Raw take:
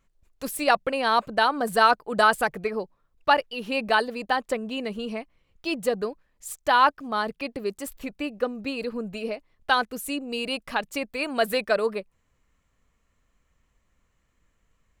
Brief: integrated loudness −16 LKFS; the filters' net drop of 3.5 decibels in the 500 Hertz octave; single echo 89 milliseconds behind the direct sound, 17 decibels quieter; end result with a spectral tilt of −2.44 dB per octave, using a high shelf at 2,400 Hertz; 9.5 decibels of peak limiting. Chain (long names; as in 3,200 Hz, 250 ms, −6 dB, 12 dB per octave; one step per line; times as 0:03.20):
parametric band 500 Hz −5 dB
high-shelf EQ 2,400 Hz +9 dB
brickwall limiter −13 dBFS
single-tap delay 89 ms −17 dB
level +11 dB